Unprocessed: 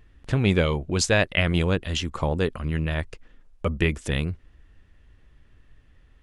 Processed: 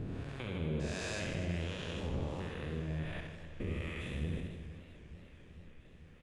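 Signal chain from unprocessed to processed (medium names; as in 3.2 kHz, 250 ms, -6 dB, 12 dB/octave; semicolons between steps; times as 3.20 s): spectrogram pixelated in time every 400 ms; compression 4:1, threshold -30 dBFS, peak gain reduction 10 dB; harmonic tremolo 1.4 Hz, depth 70%, crossover 620 Hz; reverse bouncing-ball echo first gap 70 ms, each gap 1.2×, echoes 5; modulated delay 448 ms, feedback 78%, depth 150 cents, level -18 dB; trim -3.5 dB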